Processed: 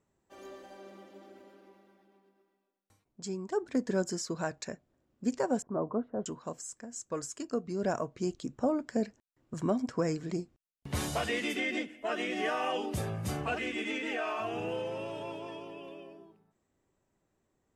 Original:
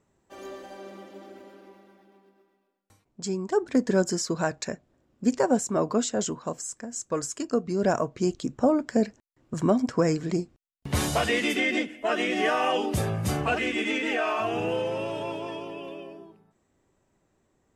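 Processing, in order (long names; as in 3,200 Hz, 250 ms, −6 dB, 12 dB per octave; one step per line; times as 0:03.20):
0:05.62–0:06.26: low-pass filter 1,200 Hz 24 dB per octave
level −7.5 dB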